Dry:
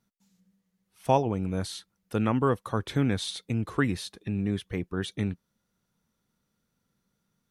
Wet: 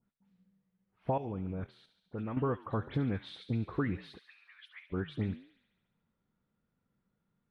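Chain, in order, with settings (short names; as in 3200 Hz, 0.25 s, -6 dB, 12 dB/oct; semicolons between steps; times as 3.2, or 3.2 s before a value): flange 2 Hz, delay 7.8 ms, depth 4.9 ms, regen -87%; vibrato 4.8 Hz 14 cents; dispersion highs, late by 76 ms, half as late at 2900 Hz; 1.1–2.37 level quantiser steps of 13 dB; air absorption 450 m; compressor, threshold -30 dBFS, peak gain reduction 5.5 dB; 4.19–4.9 steep high-pass 1200 Hz 36 dB/oct; thin delay 70 ms, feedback 68%, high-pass 2600 Hz, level -10 dB; gain +2.5 dB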